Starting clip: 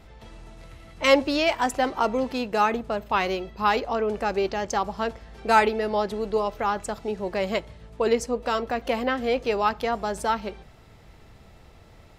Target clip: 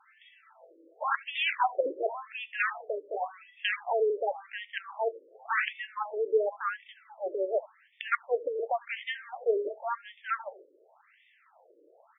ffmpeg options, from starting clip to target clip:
ffmpeg -i in.wav -filter_complex "[0:a]asplit=2[link_01][link_02];[link_02]adelay=80,highpass=300,lowpass=3400,asoftclip=type=hard:threshold=-16dB,volume=-19dB[link_03];[link_01][link_03]amix=inputs=2:normalize=0,aeval=exprs='(mod(4.73*val(0)+1,2)-1)/4.73':channel_layout=same,afftfilt=real='re*between(b*sr/1024,400*pow(2600/400,0.5+0.5*sin(2*PI*0.91*pts/sr))/1.41,400*pow(2600/400,0.5+0.5*sin(2*PI*0.91*pts/sr))*1.41)':imag='im*between(b*sr/1024,400*pow(2600/400,0.5+0.5*sin(2*PI*0.91*pts/sr))/1.41,400*pow(2600/400,0.5+0.5*sin(2*PI*0.91*pts/sr))*1.41)':win_size=1024:overlap=0.75" out.wav

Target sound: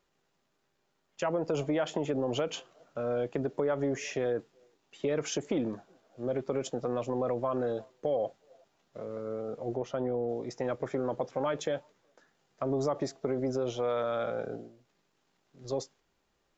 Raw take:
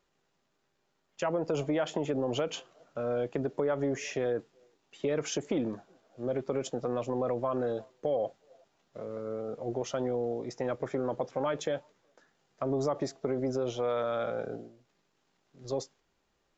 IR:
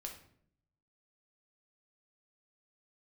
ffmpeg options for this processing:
-filter_complex "[0:a]asettb=1/sr,asplit=3[link_01][link_02][link_03];[link_01]atrim=end=9.764[link_04];[link_02]atrim=start=9.76:end=10.29,asetpts=PTS-STARTPTS,afade=type=in:duration=0.004:curve=qsin,afade=type=out:start_time=0.526:duration=0.004:curve=qsin,lowpass=frequency=1600:poles=1[link_05];[link_03]atrim=start=10.286[link_06];[link_04][link_05]acrossfade=duration=0.004:curve1=hsin:curve2=qsin[link_07];[link_07][link_06]acrossfade=duration=0.004:curve1=qsin:curve2=hsin"

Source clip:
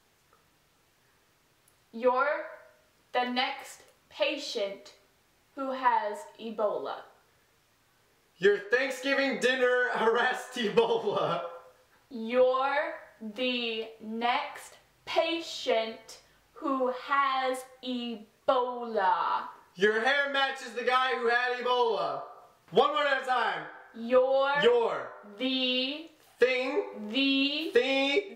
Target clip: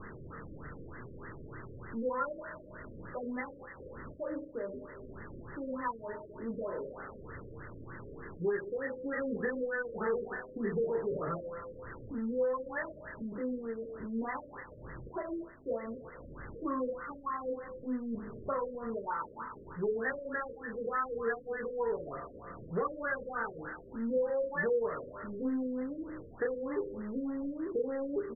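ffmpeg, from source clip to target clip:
ffmpeg -i in.wav -filter_complex "[0:a]aeval=exprs='val(0)+0.5*0.0299*sgn(val(0))':channel_layout=same,equalizer=frequency=750:width=2:gain=-15,aresample=16000,asoftclip=type=hard:threshold=-22.5dB,aresample=44100,asplit=2[link_01][link_02];[link_02]adelay=35,volume=-7dB[link_03];[link_01][link_03]amix=inputs=2:normalize=0,afftfilt=real='re*lt(b*sr/1024,580*pow(2100/580,0.5+0.5*sin(2*PI*3.3*pts/sr)))':imag='im*lt(b*sr/1024,580*pow(2100/580,0.5+0.5*sin(2*PI*3.3*pts/sr)))':win_size=1024:overlap=0.75,volume=-4.5dB" out.wav

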